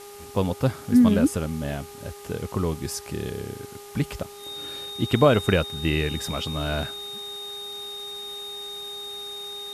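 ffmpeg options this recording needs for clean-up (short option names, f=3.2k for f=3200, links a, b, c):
-af "bandreject=f=407.2:t=h:w=4,bandreject=f=814.4:t=h:w=4,bandreject=f=1.2216k:t=h:w=4,bandreject=f=3.7k:w=30,afwtdn=0.005"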